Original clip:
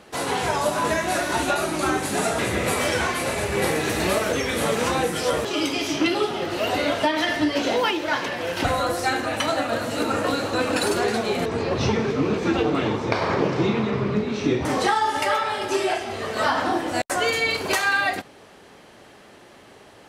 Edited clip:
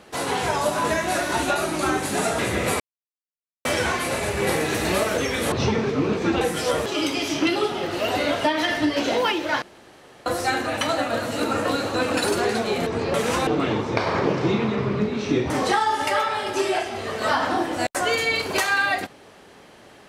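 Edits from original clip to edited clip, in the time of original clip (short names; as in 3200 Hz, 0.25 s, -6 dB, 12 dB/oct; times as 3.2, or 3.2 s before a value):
2.8 insert silence 0.85 s
4.67–5 swap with 11.73–12.62
8.21–8.85 room tone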